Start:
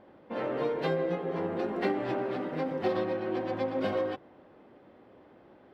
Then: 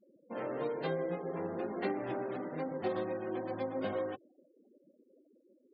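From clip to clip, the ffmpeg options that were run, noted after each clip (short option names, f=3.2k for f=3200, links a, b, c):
-af "afftfilt=real='re*gte(hypot(re,im),0.00794)':imag='im*gte(hypot(re,im),0.00794)':win_size=1024:overlap=0.75,volume=-5.5dB"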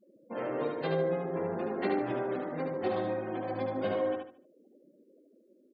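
-af "aecho=1:1:74|148|222|296:0.631|0.183|0.0531|0.0154,volume=2.5dB"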